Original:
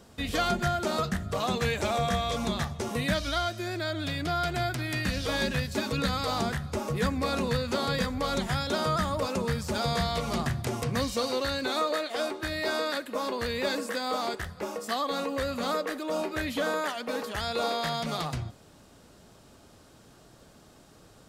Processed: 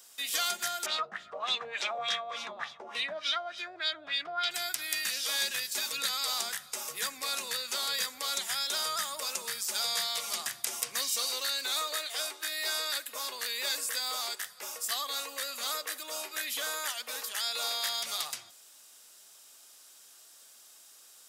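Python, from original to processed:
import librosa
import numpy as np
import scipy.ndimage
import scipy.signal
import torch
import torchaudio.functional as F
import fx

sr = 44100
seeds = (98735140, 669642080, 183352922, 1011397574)

y = fx.filter_lfo_lowpass(x, sr, shape='sine', hz=3.4, low_hz=600.0, high_hz=3900.0, q=2.3, at=(0.86, 4.51))
y = fx.highpass(y, sr, hz=390.0, slope=6)
y = np.diff(y, prepend=0.0)
y = fx.notch(y, sr, hz=4300.0, q=19.0)
y = y * 10.0 ** (9.0 / 20.0)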